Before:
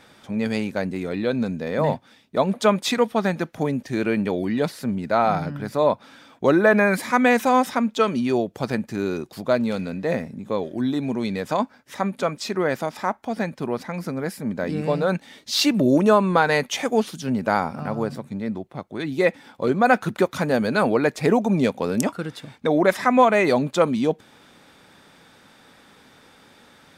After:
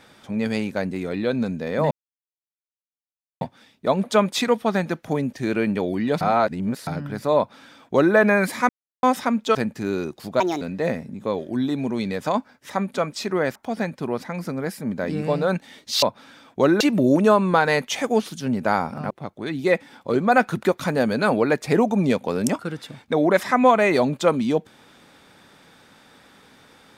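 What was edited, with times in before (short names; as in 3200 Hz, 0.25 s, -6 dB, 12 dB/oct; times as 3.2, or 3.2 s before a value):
1.91 insert silence 1.50 s
4.71–5.37 reverse
5.87–6.65 copy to 15.62
7.19–7.53 mute
8.05–8.68 cut
9.53–9.86 speed 154%
12.8–13.15 cut
17.92–18.64 cut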